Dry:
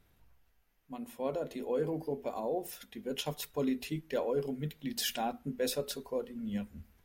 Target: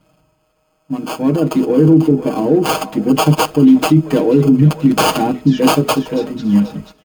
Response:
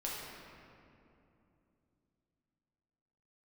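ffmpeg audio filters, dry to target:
-filter_complex "[0:a]asplit=2[a][b];[b]asoftclip=type=hard:threshold=-36dB,volume=-9dB[c];[a][c]amix=inputs=2:normalize=0,firequalizer=gain_entry='entry(280,0);entry(500,-19);entry(1900,-18);entry(6600,5);entry(11000,-2)':delay=0.05:min_phase=1,acrossover=split=530|2700[d][e][f];[d]dynaudnorm=f=270:g=11:m=5.5dB[g];[e]aecho=1:1:488|976|1464|1952|2440:0.422|0.198|0.0932|0.0438|0.0206[h];[f]acrusher=samples=23:mix=1:aa=0.000001[i];[g][h][i]amix=inputs=3:normalize=0,highpass=f=150:p=1,aecho=1:1:6.4:0.92,agate=range=-11dB:threshold=-59dB:ratio=16:detection=peak,lowshelf=f=260:g=-8.5,alimiter=level_in=29.5dB:limit=-1dB:release=50:level=0:latency=1,volume=-1dB"

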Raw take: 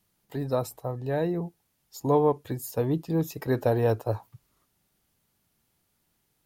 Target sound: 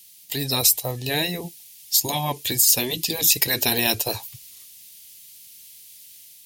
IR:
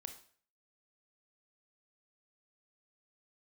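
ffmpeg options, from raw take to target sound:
-af "dynaudnorm=f=150:g=5:m=3.5dB,aexciter=amount=14.6:drive=4.3:freq=2.1k,afftfilt=real='re*lt(hypot(re,im),0.501)':imag='im*lt(hypot(re,im),0.501)':win_size=1024:overlap=0.75"

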